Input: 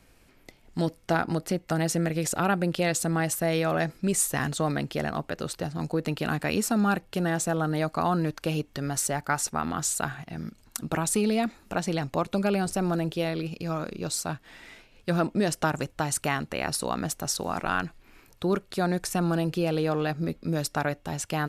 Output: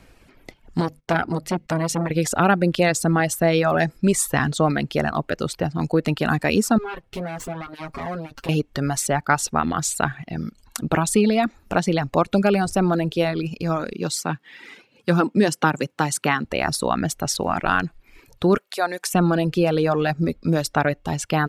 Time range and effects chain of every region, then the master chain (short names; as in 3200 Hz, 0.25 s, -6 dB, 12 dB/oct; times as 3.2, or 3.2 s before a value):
0.8–2.11 notches 50/100/150/200/250 Hz + gate -52 dBFS, range -17 dB + core saturation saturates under 1100 Hz
6.78–8.49 minimum comb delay 7.3 ms + compressor 3:1, threshold -35 dBFS + notch comb 150 Hz
13.93–16.45 HPF 140 Hz 24 dB/oct + notch 650 Hz, Q 5.4
18.57–19.14 HPF 580 Hz + high shelf 10000 Hz +8 dB
whole clip: reverb removal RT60 0.73 s; high shelf 6000 Hz -8.5 dB; gain +8.5 dB